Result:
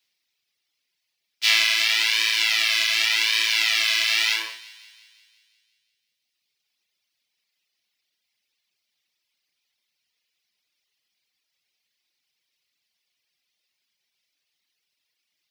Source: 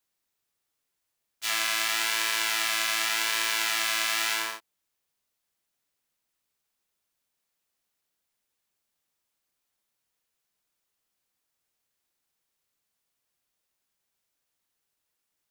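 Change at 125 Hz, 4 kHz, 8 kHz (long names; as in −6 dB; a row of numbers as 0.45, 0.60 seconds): can't be measured, +8.5 dB, +0.5 dB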